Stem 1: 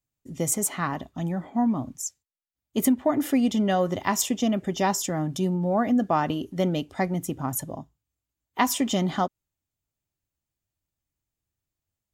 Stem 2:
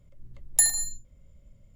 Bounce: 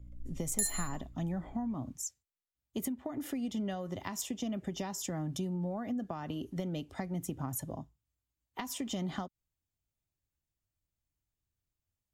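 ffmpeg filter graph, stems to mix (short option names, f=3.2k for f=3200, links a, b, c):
-filter_complex "[0:a]acompressor=threshold=-28dB:ratio=6,volume=-5.5dB,asplit=2[a][b];[1:a]aeval=exprs='val(0)+0.00447*(sin(2*PI*60*n/s)+sin(2*PI*2*60*n/s)/2+sin(2*PI*3*60*n/s)/3+sin(2*PI*4*60*n/s)/4+sin(2*PI*5*60*n/s)/5)':c=same,volume=-7dB[c];[b]apad=whole_len=77202[d];[c][d]sidechaincompress=threshold=-38dB:ratio=8:attack=45:release=736[e];[a][e]amix=inputs=2:normalize=0,lowshelf=f=98:g=8,acrossover=split=250|3000[f][g][h];[g]acompressor=threshold=-37dB:ratio=6[i];[f][i][h]amix=inputs=3:normalize=0"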